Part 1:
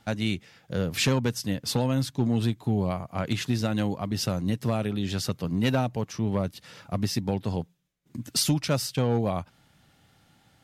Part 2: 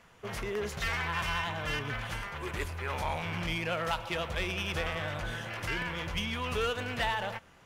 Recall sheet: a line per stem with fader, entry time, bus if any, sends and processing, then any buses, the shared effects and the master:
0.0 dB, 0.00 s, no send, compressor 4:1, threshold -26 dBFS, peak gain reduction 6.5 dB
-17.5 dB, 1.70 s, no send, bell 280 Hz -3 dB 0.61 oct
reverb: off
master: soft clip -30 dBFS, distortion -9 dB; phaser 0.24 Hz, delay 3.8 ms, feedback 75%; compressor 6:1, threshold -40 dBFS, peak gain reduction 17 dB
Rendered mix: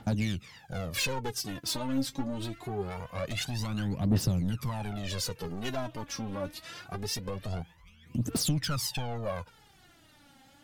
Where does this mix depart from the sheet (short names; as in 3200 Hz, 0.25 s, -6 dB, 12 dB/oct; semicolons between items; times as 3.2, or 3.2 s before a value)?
stem 2 -17.5 dB -> -27.5 dB; master: missing compressor 6:1, threshold -40 dBFS, peak gain reduction 17 dB